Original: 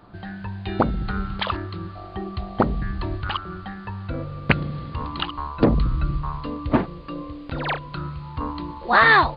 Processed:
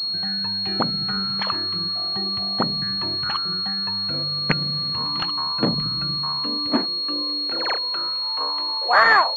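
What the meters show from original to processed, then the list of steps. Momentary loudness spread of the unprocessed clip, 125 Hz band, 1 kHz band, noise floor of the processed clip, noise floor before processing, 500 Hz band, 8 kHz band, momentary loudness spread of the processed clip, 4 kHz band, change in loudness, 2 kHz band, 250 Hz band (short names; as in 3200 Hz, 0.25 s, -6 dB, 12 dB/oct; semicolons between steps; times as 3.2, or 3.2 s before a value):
14 LU, -6.0 dB, 0.0 dB, -26 dBFS, -39 dBFS, -2.5 dB, n/a, 2 LU, +15.5 dB, +4.0 dB, -1.0 dB, -2.5 dB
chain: high-pass sweep 160 Hz -> 560 Hz, 5.88–8.37; in parallel at -2 dB: compressor, threshold -30 dBFS, peak gain reduction 20.5 dB; on the sum: tilt shelf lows -7.5 dB, about 1100 Hz; pulse-width modulation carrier 4300 Hz; gain -2.5 dB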